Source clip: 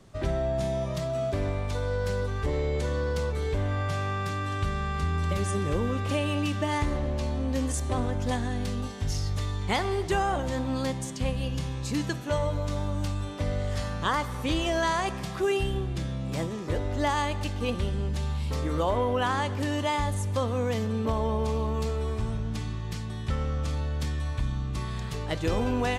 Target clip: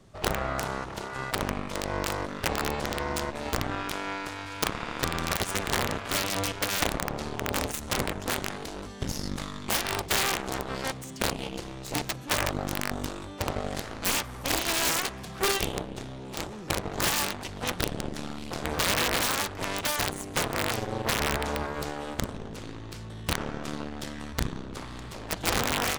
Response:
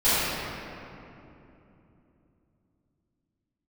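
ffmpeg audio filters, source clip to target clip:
-af "aeval=exprs='0.188*(cos(1*acos(clip(val(0)/0.188,-1,1)))-cos(1*PI/2))+0.00237*(cos(2*acos(clip(val(0)/0.188,-1,1)))-cos(2*PI/2))+0.00376*(cos(3*acos(clip(val(0)/0.188,-1,1)))-cos(3*PI/2))+0.0473*(cos(7*acos(clip(val(0)/0.188,-1,1)))-cos(7*PI/2))':channel_layout=same,aeval=exprs='(mod(6.68*val(0)+1,2)-1)/6.68':channel_layout=same"

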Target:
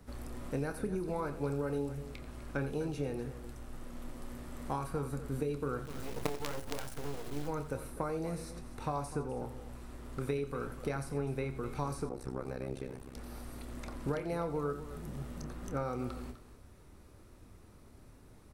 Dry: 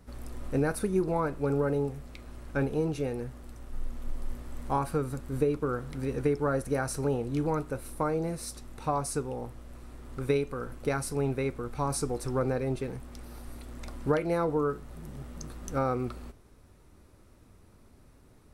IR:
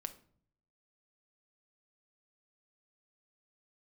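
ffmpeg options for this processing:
-filter_complex "[0:a]acrossover=split=86|2600[link_01][link_02][link_03];[link_01]acompressor=threshold=-42dB:ratio=4[link_04];[link_02]acompressor=threshold=-34dB:ratio=4[link_05];[link_03]acompressor=threshold=-54dB:ratio=4[link_06];[link_04][link_05][link_06]amix=inputs=3:normalize=0,asplit=3[link_07][link_08][link_09];[link_07]afade=type=out:start_time=5.84:duration=0.02[link_10];[link_08]acrusher=bits=5:dc=4:mix=0:aa=0.000001,afade=type=in:start_time=5.84:duration=0.02,afade=type=out:start_time=7.47:duration=0.02[link_11];[link_09]afade=type=in:start_time=7.47:duration=0.02[link_12];[link_10][link_11][link_12]amix=inputs=3:normalize=0,asplit=2[link_13][link_14];[link_14]adelay=28,volume=-11.5dB[link_15];[link_13][link_15]amix=inputs=2:normalize=0,aecho=1:1:88|251:0.211|0.2,asettb=1/sr,asplit=3[link_16][link_17][link_18];[link_16]atrim=end=12.094[link_19];[link_17]atrim=start=12.09:end=13.15,asetpts=PTS-STARTPTS,afade=type=in:duration=0.004:curve=qsin,afade=type=out:start_time=1.056:duration=0.004:curve=qsin,tremolo=f=66:d=0.947[link_20];[link_18]atrim=start=13.146[link_21];[link_19][link_20]acrossfade=duration=0.004:curve1=hsin:curve2=qsin[link_22];[link_22][link_21]acrossfade=duration=0.004:curve1=qsin:curve2=hsin"

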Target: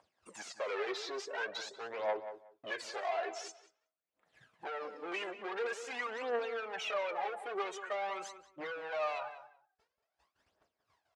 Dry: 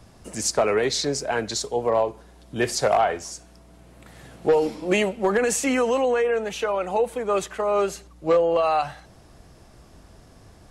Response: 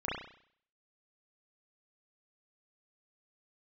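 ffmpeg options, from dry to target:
-filter_complex "[0:a]aemphasis=mode=production:type=75fm,afftdn=noise_reduction=23:noise_floor=-31,agate=range=-33dB:threshold=-48dB:ratio=3:detection=peak,equalizer=frequency=1500:width_type=o:width=2.7:gain=3,acompressor=mode=upward:threshold=-40dB:ratio=2.5,alimiter=limit=-10dB:level=0:latency=1:release=412,acompressor=threshold=-27dB:ratio=12,volume=35dB,asoftclip=hard,volume=-35dB,aphaser=in_gain=1:out_gain=1:delay=2.9:decay=0.64:speed=0.49:type=triangular,asplit=2[link_01][link_02];[link_02]adelay=177,lowpass=frequency=2100:poles=1,volume=-10.5dB,asplit=2[link_03][link_04];[link_04]adelay=177,lowpass=frequency=2100:poles=1,volume=0.18[link_05];[link_01][link_03][link_05]amix=inputs=3:normalize=0,asetrate=42336,aresample=44100,highpass=550,lowpass=2900"

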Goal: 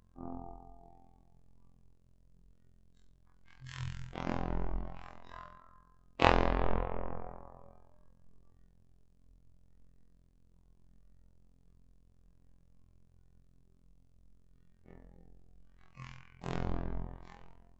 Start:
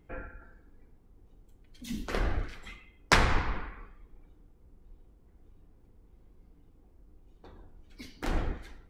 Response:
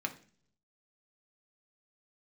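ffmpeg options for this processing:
-af "afftfilt=real='hypot(re,im)*cos(PI*b)':imag='0':win_size=2048:overlap=0.75,asetrate=22050,aresample=44100"

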